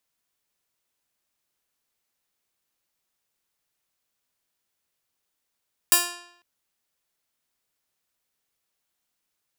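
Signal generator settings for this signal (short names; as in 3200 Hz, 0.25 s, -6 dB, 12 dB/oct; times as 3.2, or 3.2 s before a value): plucked string F4, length 0.50 s, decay 0.74 s, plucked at 0.17, bright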